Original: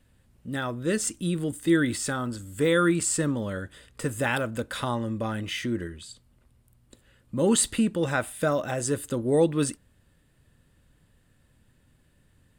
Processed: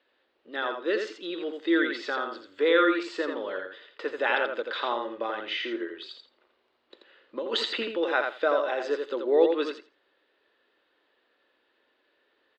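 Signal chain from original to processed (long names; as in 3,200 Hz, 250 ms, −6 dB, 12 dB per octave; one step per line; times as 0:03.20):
elliptic band-pass filter 370–4,100 Hz, stop band 40 dB
0:05.94–0:07.83: compressor whose output falls as the input rises −31 dBFS, ratio −1
repeating echo 84 ms, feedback 16%, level −5.5 dB
level +1.5 dB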